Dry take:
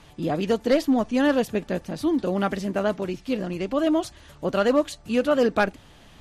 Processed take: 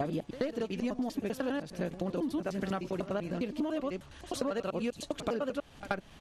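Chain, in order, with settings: slices played last to first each 100 ms, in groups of 4; compression 12:1, threshold -27 dBFS, peak gain reduction 13 dB; pitch shift -0.5 st; reverse echo 79 ms -13.5 dB; trim -2.5 dB

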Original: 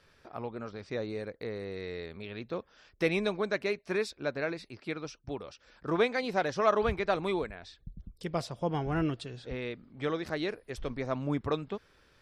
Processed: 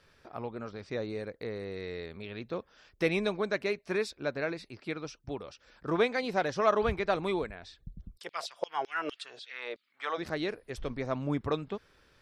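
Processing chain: 8.17–10.17 s: LFO high-pass saw down 7 Hz -> 1.8 Hz 450–4400 Hz

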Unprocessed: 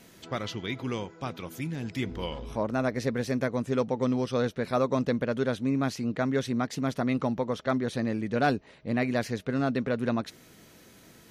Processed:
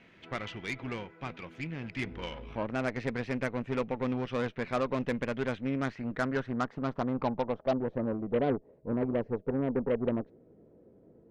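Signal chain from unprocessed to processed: low-pass sweep 2.4 kHz -> 480 Hz, 5.51–8.46 s; Chebyshev shaper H 8 -22 dB, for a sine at -12 dBFS; trim -5.5 dB

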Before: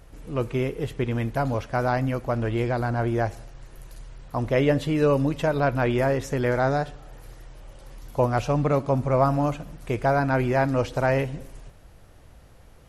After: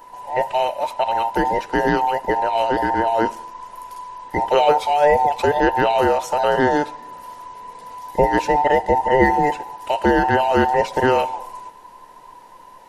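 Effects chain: every band turned upside down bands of 1 kHz; trim +5.5 dB

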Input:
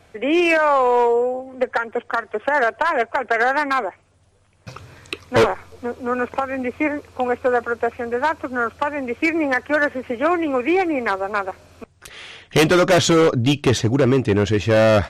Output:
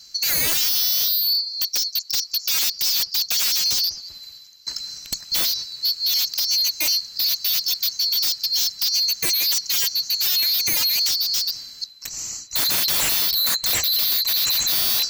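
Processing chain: split-band scrambler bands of 4 kHz; peaking EQ 590 Hz -10.5 dB 2.8 oct; in parallel at -7.5 dB: hard clipper -13.5 dBFS, distortion -15 dB; on the sum: bucket-brigade echo 194 ms, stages 4096, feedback 33%, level -18.5 dB; wavefolder -20 dBFS; reverse; upward compressor, threshold -32 dBFS; reverse; trim +4.5 dB

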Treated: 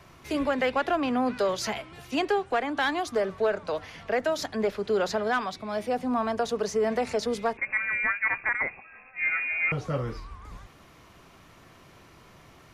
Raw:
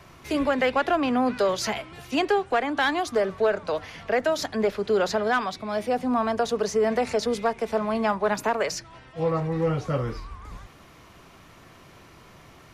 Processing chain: 7.57–9.72 s: frequency inversion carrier 2.6 kHz; trim -3 dB

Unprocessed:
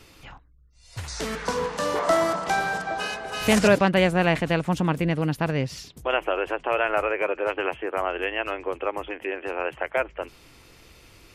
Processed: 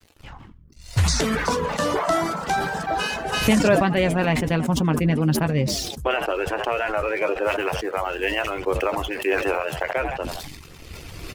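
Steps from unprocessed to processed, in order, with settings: recorder AGC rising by 12 dB/s; bass shelf 240 Hz +7.5 dB; crossover distortion -44 dBFS; 7.44–9.83 s: treble shelf 7.3 kHz +8 dB; frequency-shifting echo 82 ms, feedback 48%, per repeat +72 Hz, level -14.5 dB; reverb removal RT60 0.77 s; doubling 13 ms -10 dB; decay stretcher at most 40 dB/s; trim -1.5 dB

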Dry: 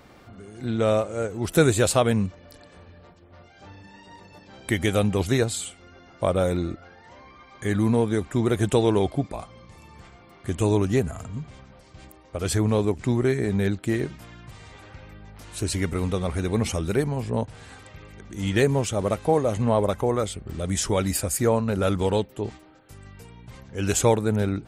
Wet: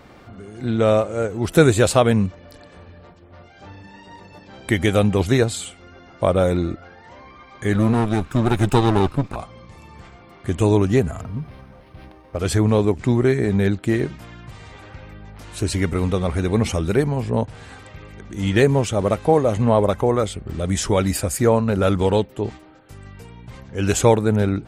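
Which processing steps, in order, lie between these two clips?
7.73–9.36 s: comb filter that takes the minimum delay 0.78 ms; treble shelf 5.4 kHz -6.5 dB; 11.21–12.38 s: decimation joined by straight lines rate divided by 6×; trim +5 dB

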